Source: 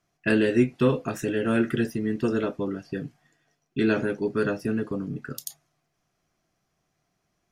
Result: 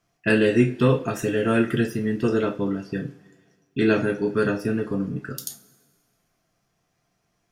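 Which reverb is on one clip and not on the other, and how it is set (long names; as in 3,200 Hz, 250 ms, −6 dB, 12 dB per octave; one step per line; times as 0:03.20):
coupled-rooms reverb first 0.28 s, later 1.7 s, from −21 dB, DRR 4 dB
level +2 dB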